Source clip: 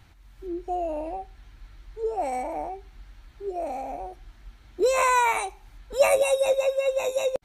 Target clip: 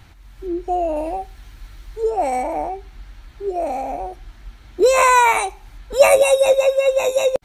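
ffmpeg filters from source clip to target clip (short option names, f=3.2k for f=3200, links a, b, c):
-filter_complex "[0:a]asettb=1/sr,asplit=3[a][b][c];[a]atrim=end=0.964[d];[b]atrim=start=0.96:end=2.1,asetpts=PTS-STARTPTS,afade=t=in:d=0.004:c=qsin,afade=t=out:st=1.136:d=0.004:c=qsin,highshelf=f=6.1k:g=9.5[e];[c]atrim=start=2.096[f];[d][e]acrossfade=d=0.004:c1=hsin:c2=qsin[g];[g][f]acrossfade=d=0.004:c1=qsin:c2=hsin,volume=8dB"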